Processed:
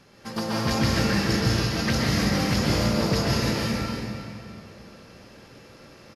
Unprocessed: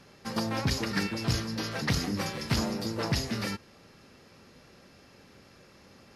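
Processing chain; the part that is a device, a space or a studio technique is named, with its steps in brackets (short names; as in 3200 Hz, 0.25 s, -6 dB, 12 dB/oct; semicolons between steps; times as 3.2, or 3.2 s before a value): cave (echo 0.328 s -12.5 dB; reverb RT60 2.7 s, pre-delay 0.12 s, DRR -6 dB)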